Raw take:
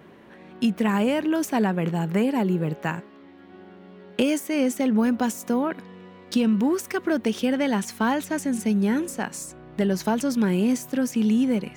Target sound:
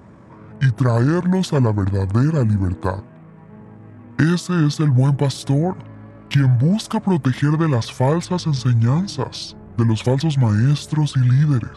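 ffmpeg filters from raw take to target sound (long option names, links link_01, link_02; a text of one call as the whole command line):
ffmpeg -i in.wav -af "asetrate=25476,aresample=44100,atempo=1.73107,volume=6dB" out.wav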